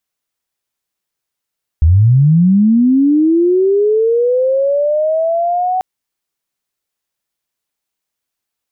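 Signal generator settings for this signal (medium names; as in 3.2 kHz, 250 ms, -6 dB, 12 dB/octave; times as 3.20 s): sweep linear 73 Hz -> 750 Hz -5 dBFS -> -12.5 dBFS 3.99 s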